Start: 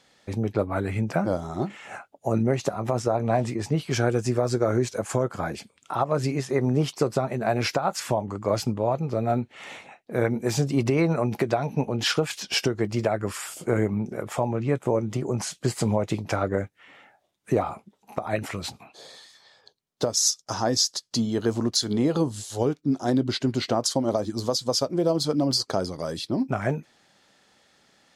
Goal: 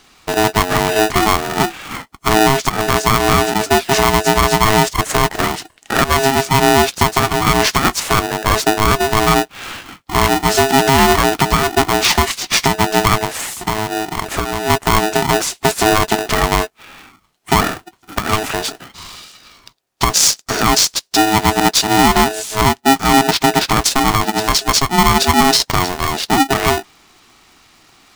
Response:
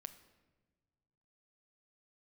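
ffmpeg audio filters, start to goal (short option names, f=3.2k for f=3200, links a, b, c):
-filter_complex "[0:a]asettb=1/sr,asplit=3[a][b][c];[a]atrim=end=13.234[d];[b]atrim=start=13.23:end=14.7,asetpts=PTS-STARTPTS,afade=t=in:d=0.004:c=qsin,afade=t=out:st=1.466:d=0.004:c=qsin,acompressor=threshold=-28dB:ratio=6[e];[c]atrim=start=14.696[f];[d][e]acrossfade=d=0.004:c1=hsin:c2=qsin[g];[g][f]acrossfade=d=0.004:c1=qsin:c2=hsin,alimiter=level_in=13dB:limit=-1dB:release=50:level=0:latency=1,aeval=exprs='val(0)*sgn(sin(2*PI*540*n/s))':c=same,volume=-1dB"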